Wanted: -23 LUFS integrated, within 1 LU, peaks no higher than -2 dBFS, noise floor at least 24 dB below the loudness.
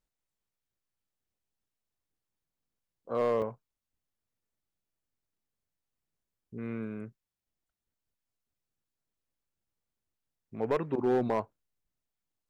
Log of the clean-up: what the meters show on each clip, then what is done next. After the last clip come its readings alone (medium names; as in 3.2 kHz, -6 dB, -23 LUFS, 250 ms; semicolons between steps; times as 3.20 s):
clipped samples 0.4%; clipping level -21.5 dBFS; dropouts 1; longest dropout 4.7 ms; loudness -32.0 LUFS; peak level -21.5 dBFS; loudness target -23.0 LUFS
-> clip repair -21.5 dBFS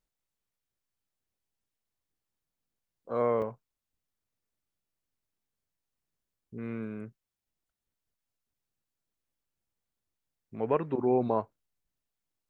clipped samples 0.0%; dropouts 1; longest dropout 4.7 ms
-> interpolate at 3.42 s, 4.7 ms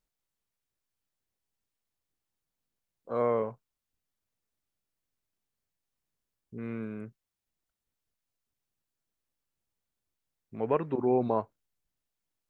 dropouts 0; loudness -31.0 LUFS; peak level -13.5 dBFS; loudness target -23.0 LUFS
-> trim +8 dB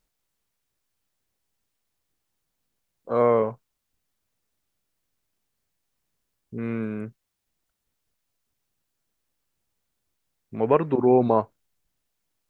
loudness -23.0 LUFS; peak level -5.5 dBFS; noise floor -79 dBFS